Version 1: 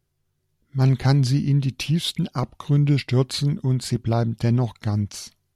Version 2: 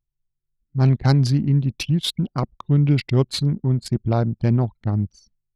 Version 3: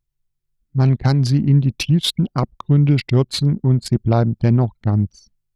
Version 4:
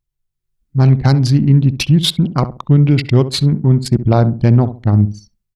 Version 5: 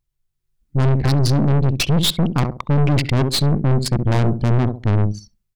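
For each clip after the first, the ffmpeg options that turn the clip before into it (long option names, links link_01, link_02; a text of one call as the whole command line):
ffmpeg -i in.wav -af "anlmdn=100,volume=1.5dB" out.wav
ffmpeg -i in.wav -af "alimiter=limit=-10.5dB:level=0:latency=1:release=400,volume=4.5dB" out.wav
ffmpeg -i in.wav -filter_complex "[0:a]dynaudnorm=framelen=210:gausssize=5:maxgain=11.5dB,asplit=2[link_01][link_02];[link_02]adelay=67,lowpass=frequency=950:poles=1,volume=-11.5dB,asplit=2[link_03][link_04];[link_04]adelay=67,lowpass=frequency=950:poles=1,volume=0.27,asplit=2[link_05][link_06];[link_06]adelay=67,lowpass=frequency=950:poles=1,volume=0.27[link_07];[link_03][link_05][link_07]amix=inputs=3:normalize=0[link_08];[link_01][link_08]amix=inputs=2:normalize=0,volume=-1dB" out.wav
ffmpeg -i in.wav -af "aeval=exprs='(tanh(8.91*val(0)+0.65)-tanh(0.65))/8.91':channel_layout=same,volume=5dB" out.wav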